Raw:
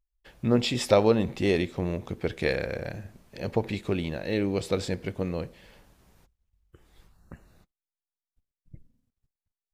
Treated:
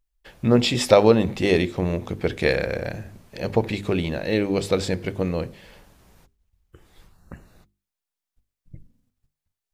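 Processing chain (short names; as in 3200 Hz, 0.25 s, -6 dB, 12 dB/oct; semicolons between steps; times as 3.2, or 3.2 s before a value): notches 50/100/150/200/250/300/350/400 Hz; gain +6 dB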